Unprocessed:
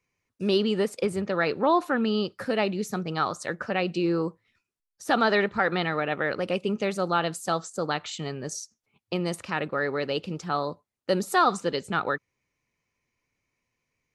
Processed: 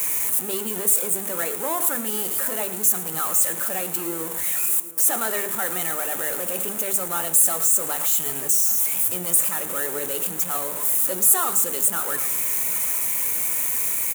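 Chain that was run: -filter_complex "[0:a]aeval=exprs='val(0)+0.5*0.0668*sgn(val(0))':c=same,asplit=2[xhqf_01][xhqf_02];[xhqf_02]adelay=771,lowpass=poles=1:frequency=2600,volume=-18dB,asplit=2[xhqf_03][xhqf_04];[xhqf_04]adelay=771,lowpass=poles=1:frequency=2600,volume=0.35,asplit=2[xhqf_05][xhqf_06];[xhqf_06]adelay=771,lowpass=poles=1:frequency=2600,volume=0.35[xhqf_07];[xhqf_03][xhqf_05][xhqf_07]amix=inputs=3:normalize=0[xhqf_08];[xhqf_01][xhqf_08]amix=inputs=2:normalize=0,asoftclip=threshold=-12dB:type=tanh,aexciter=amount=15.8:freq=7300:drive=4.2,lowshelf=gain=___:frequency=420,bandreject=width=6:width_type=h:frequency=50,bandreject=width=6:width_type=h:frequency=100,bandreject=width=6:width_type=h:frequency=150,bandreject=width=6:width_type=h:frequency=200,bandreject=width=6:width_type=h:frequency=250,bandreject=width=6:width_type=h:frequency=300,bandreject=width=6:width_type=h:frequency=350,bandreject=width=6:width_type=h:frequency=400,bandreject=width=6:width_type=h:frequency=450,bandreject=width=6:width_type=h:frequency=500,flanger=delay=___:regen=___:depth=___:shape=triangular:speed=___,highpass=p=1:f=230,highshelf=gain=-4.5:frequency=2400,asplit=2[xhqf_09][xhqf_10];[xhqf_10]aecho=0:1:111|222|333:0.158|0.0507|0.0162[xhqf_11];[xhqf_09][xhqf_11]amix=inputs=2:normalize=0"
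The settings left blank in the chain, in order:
-4.5, 6.3, 76, 5.1, 1.9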